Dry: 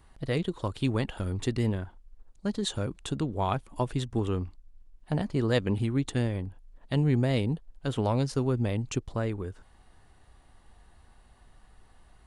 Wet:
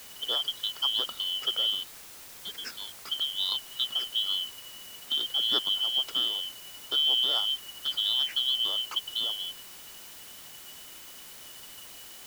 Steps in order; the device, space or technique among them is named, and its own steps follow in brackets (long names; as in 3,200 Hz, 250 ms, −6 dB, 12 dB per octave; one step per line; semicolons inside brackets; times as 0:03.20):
0:01.83–0:03.08: high-pass filter 700 Hz 6 dB per octave
split-band scrambled radio (band-splitting scrambler in four parts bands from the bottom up 2413; band-pass filter 340–3,100 Hz; white noise bed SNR 15 dB)
level +2 dB